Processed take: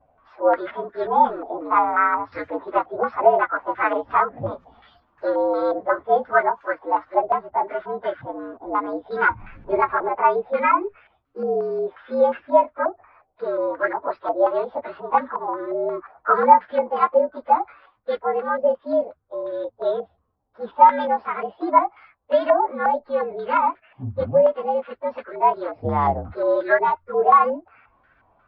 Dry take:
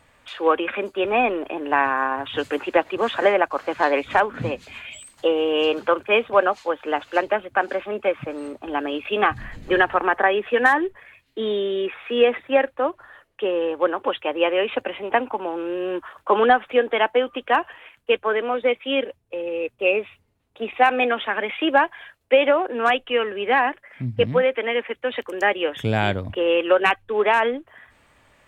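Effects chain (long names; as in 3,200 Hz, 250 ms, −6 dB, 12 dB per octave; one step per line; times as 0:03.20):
partials spread apart or drawn together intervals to 115%
low-pass on a step sequencer 5.6 Hz 720–1,600 Hz
level −2 dB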